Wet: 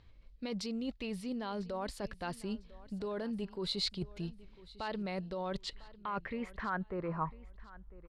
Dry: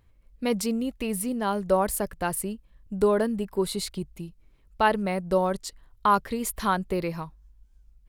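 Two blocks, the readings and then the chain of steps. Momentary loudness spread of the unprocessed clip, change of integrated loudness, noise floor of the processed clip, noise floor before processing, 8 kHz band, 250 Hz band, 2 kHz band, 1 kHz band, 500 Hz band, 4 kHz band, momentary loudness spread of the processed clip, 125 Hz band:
15 LU, -12.5 dB, -59 dBFS, -60 dBFS, -19.5 dB, -10.0 dB, -11.0 dB, -14.5 dB, -14.0 dB, -2.5 dB, 9 LU, -8.0 dB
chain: limiter -20.5 dBFS, peak gain reduction 11 dB; reverse; compressor 12:1, threshold -36 dBFS, peak gain reduction 12.5 dB; reverse; low-pass sweep 4300 Hz -> 1100 Hz, 5.26–7.35; feedback echo 1 s, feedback 26%, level -19.5 dB; gain +1 dB

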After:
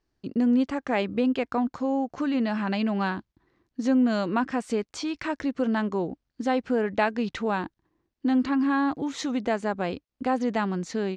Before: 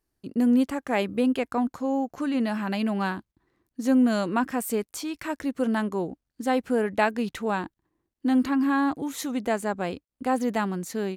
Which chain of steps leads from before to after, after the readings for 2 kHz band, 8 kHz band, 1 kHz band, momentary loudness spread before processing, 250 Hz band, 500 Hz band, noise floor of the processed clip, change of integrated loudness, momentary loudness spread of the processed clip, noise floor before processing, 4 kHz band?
-0.5 dB, -5.5 dB, -0.5 dB, 10 LU, -0.5 dB, 0.0 dB, -82 dBFS, -0.5 dB, 8 LU, -84 dBFS, +0.5 dB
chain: LPF 6000 Hz 24 dB/oct; in parallel at +2 dB: compressor, threshold -29 dBFS, peak gain reduction 11.5 dB; on the sum: gain -4 dB

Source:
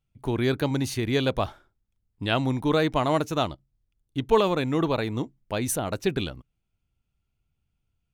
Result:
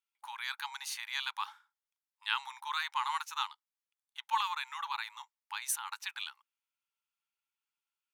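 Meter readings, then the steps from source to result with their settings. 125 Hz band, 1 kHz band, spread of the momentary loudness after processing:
under -40 dB, -5.5 dB, 10 LU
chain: brick-wall FIR high-pass 810 Hz; gain -4.5 dB

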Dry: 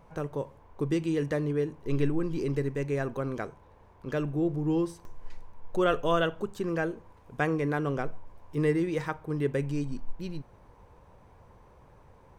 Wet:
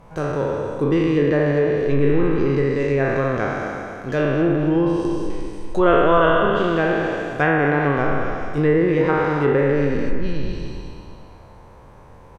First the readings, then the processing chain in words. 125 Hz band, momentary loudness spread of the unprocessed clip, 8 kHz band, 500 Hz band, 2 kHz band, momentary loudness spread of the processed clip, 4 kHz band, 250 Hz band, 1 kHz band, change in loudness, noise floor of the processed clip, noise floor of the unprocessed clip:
+9.0 dB, 13 LU, n/a, +12.5 dB, +13.5 dB, 11 LU, +8.5 dB, +10.5 dB, +13.5 dB, +11.0 dB, -44 dBFS, -57 dBFS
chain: spectral trails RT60 2.47 s; echo 0.236 s -10 dB; treble ducked by the level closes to 2100 Hz, closed at -19.5 dBFS; gain +7 dB

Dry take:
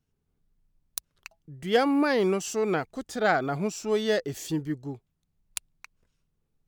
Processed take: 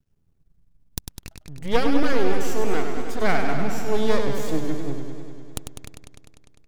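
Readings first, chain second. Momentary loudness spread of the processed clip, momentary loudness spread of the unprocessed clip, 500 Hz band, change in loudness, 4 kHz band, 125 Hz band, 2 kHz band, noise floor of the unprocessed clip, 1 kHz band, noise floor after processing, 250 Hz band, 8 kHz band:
18 LU, 15 LU, +1.0 dB, +1.0 dB, +1.0 dB, +4.0 dB, +1.0 dB, -78 dBFS, +1.5 dB, -64 dBFS, +2.0 dB, -0.5 dB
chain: half-wave rectifier; low shelf 280 Hz +8.5 dB; warbling echo 0.1 s, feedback 76%, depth 95 cents, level -6.5 dB; gain +3 dB

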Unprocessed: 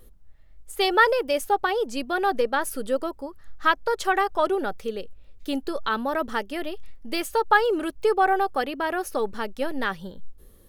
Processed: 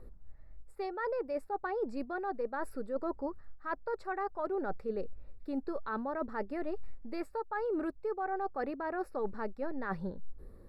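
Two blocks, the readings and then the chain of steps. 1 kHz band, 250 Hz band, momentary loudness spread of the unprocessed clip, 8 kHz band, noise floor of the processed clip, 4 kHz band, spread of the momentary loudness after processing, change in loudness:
-14.0 dB, -7.5 dB, 13 LU, under -25 dB, -53 dBFS, under -25 dB, 6 LU, -12.5 dB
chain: reverse; compressor 12:1, threshold -32 dBFS, peak gain reduction 20 dB; reverse; running mean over 14 samples; gain +1 dB

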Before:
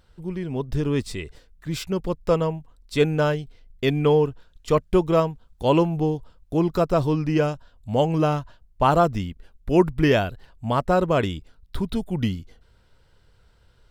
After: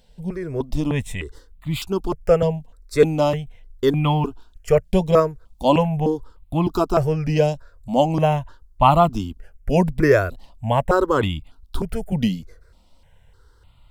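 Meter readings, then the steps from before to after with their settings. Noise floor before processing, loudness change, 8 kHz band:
-59 dBFS, +2.5 dB, n/a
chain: wow and flutter 29 cents; step phaser 3.3 Hz 340–1600 Hz; gain +6 dB

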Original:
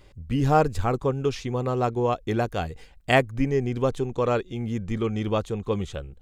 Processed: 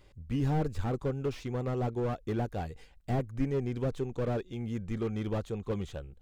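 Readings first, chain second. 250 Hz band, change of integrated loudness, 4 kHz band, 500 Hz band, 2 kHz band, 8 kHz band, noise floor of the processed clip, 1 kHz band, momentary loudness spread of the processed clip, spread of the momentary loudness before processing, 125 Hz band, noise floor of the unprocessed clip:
-6.5 dB, -8.0 dB, -13.5 dB, -9.5 dB, -15.5 dB, under -10 dB, -58 dBFS, -13.0 dB, 5 LU, 9 LU, -5.0 dB, -51 dBFS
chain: slew limiter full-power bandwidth 38 Hz; gain -6.5 dB

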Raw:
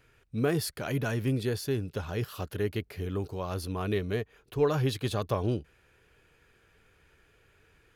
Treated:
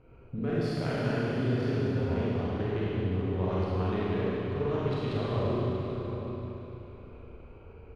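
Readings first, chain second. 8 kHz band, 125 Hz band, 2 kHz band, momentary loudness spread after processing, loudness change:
under -15 dB, +2.0 dB, -1.0 dB, 17 LU, +0.5 dB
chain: Wiener smoothing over 25 samples; LPF 3500 Hz 12 dB/oct; compressor 5:1, threshold -44 dBFS, peak gain reduction 20.5 dB; outdoor echo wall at 130 m, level -9 dB; Schroeder reverb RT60 3.3 s, combs from 33 ms, DRR -8.5 dB; gain +7.5 dB

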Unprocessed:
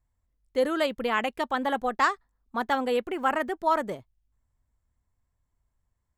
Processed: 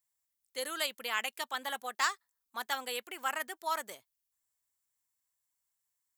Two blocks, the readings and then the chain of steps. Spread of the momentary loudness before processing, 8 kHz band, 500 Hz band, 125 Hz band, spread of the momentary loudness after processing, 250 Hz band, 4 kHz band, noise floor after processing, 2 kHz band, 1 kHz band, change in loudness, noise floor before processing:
9 LU, +7.5 dB, -15.5 dB, under -20 dB, 12 LU, -21.0 dB, +0.5 dB, -85 dBFS, -5.0 dB, -10.0 dB, -8.0 dB, -79 dBFS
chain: differentiator; gain +7 dB

